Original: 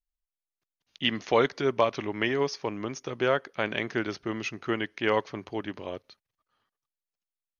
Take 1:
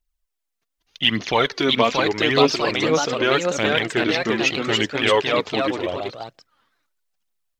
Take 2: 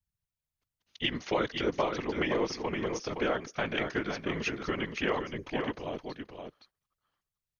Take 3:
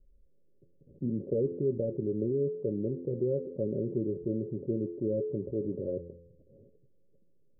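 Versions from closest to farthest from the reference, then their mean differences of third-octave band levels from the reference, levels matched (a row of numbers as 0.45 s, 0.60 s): 2, 1, 3; 5.5 dB, 7.5 dB, 14.5 dB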